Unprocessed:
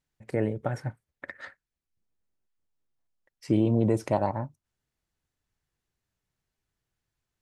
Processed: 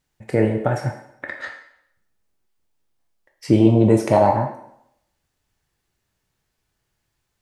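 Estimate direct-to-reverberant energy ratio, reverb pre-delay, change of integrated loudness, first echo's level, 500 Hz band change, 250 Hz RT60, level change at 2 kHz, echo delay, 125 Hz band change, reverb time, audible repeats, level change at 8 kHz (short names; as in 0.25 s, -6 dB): 2.0 dB, 6 ms, +9.5 dB, none, +10.5 dB, 0.75 s, +10.5 dB, none, +9.0 dB, 0.70 s, none, n/a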